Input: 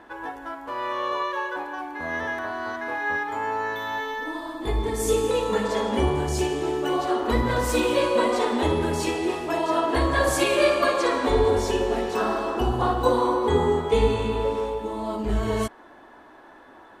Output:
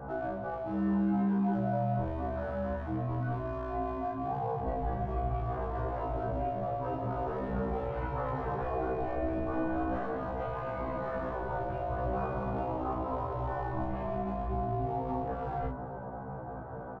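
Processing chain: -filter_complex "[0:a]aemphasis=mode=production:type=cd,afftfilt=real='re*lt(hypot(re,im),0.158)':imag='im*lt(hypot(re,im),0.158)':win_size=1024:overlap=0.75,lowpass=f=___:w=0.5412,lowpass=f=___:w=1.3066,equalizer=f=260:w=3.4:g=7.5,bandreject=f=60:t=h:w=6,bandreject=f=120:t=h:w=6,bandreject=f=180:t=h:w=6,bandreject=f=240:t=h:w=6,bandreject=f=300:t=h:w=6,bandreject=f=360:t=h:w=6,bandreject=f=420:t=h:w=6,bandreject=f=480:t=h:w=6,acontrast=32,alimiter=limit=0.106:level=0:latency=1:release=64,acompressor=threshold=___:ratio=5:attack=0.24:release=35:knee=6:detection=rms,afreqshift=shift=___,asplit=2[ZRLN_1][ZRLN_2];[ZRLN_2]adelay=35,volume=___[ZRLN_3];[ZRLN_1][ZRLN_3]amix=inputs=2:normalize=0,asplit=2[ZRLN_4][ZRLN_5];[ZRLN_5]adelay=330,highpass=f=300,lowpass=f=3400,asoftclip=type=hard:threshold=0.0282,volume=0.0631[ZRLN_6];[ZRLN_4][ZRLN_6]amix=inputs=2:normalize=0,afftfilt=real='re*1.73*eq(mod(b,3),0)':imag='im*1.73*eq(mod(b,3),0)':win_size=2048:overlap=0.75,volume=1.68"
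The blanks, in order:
1200, 1200, 0.0251, -170, 0.631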